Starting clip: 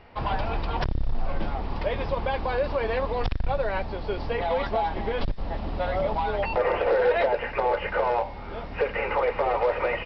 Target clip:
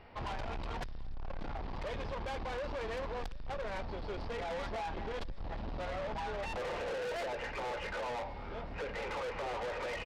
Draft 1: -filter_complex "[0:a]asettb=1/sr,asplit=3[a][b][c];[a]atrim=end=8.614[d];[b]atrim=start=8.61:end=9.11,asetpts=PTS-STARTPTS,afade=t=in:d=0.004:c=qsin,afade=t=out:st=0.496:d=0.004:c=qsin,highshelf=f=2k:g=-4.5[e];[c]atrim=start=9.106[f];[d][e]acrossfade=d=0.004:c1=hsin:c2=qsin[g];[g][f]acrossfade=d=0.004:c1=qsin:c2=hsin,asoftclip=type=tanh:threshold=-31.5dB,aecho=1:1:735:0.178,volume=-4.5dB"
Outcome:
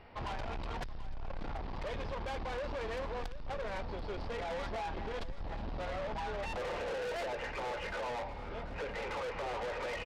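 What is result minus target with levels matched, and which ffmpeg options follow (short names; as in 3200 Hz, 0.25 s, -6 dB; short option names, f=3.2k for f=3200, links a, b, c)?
echo-to-direct +10 dB
-filter_complex "[0:a]asettb=1/sr,asplit=3[a][b][c];[a]atrim=end=8.614[d];[b]atrim=start=8.61:end=9.11,asetpts=PTS-STARTPTS,afade=t=in:d=0.004:c=qsin,afade=t=out:st=0.496:d=0.004:c=qsin,highshelf=f=2k:g=-4.5[e];[c]atrim=start=9.106[f];[d][e]acrossfade=d=0.004:c1=hsin:c2=qsin[g];[g][f]acrossfade=d=0.004:c1=qsin:c2=hsin,asoftclip=type=tanh:threshold=-31.5dB,aecho=1:1:735:0.0562,volume=-4.5dB"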